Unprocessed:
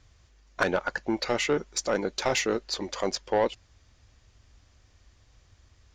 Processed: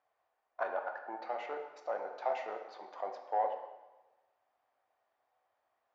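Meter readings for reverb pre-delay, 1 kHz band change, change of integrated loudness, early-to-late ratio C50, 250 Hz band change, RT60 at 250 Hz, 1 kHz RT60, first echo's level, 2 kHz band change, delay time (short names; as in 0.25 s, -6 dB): 5 ms, -3.5 dB, -10.5 dB, 6.5 dB, -24.5 dB, 1.2 s, 1.1 s, none, -14.5 dB, none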